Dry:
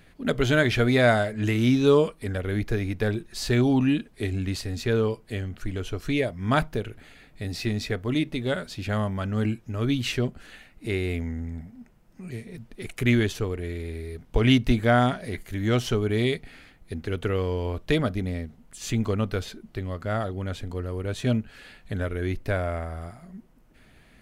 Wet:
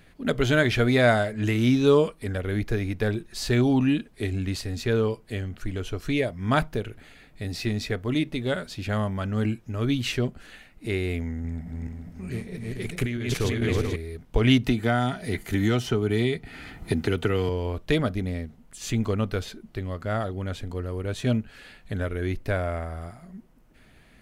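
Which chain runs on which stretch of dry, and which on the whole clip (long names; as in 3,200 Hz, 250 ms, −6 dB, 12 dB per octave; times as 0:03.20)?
0:11.44–0:13.96: feedback delay that plays each chunk backwards 217 ms, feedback 57%, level −1.5 dB + compressor whose output falls as the input rises −25 dBFS + highs frequency-modulated by the lows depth 0.12 ms
0:14.63–0:17.49: notch comb filter 550 Hz + multiband upward and downward compressor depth 100%
whole clip: no processing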